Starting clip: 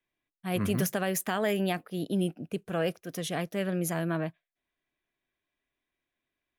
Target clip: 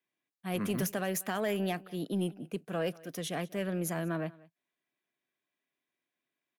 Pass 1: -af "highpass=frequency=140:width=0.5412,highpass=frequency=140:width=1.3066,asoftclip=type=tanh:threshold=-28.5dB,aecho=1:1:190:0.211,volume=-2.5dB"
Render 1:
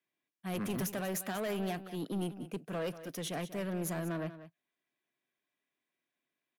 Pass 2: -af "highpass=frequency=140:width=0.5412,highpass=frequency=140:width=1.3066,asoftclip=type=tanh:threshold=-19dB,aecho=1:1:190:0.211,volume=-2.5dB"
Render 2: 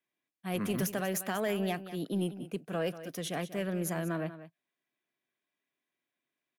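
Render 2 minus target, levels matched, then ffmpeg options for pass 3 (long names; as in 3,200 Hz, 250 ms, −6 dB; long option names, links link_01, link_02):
echo-to-direct +9 dB
-af "highpass=frequency=140:width=0.5412,highpass=frequency=140:width=1.3066,asoftclip=type=tanh:threshold=-19dB,aecho=1:1:190:0.075,volume=-2.5dB"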